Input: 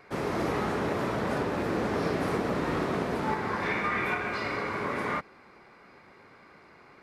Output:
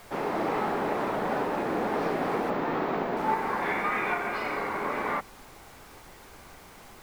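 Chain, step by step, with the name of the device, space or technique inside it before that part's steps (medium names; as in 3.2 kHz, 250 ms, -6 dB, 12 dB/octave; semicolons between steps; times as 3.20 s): horn gramophone (band-pass 200–3700 Hz; peaking EQ 810 Hz +6.5 dB 0.5 oct; wow and flutter; pink noise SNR 21 dB); 2.50–3.17 s: peaking EQ 10 kHz -13.5 dB 0.89 oct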